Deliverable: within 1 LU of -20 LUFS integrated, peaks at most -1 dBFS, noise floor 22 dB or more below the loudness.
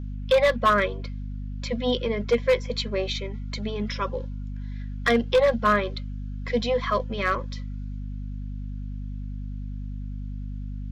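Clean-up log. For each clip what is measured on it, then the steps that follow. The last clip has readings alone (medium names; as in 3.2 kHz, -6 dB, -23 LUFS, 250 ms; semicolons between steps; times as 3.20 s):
clipped samples 0.5%; clipping level -13.5 dBFS; hum 50 Hz; highest harmonic 250 Hz; hum level -30 dBFS; loudness -27.0 LUFS; peak level -13.5 dBFS; loudness target -20.0 LUFS
-> clip repair -13.5 dBFS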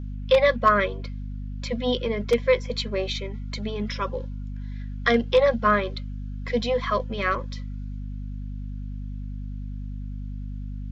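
clipped samples 0.0%; hum 50 Hz; highest harmonic 250 Hz; hum level -30 dBFS
-> hum notches 50/100/150/200/250 Hz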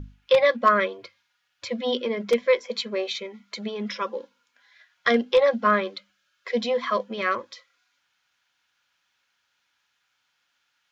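hum not found; loudness -24.5 LUFS; peak level -6.0 dBFS; loudness target -20.0 LUFS
-> trim +4.5 dB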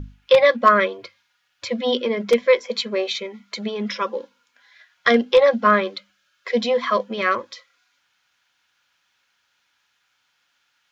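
loudness -20.0 LUFS; peak level -1.5 dBFS; noise floor -69 dBFS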